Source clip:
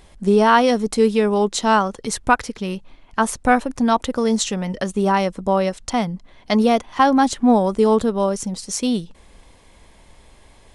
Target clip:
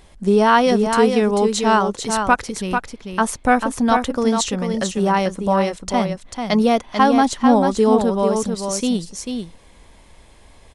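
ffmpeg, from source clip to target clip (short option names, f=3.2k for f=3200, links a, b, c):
-af "aecho=1:1:442:0.501"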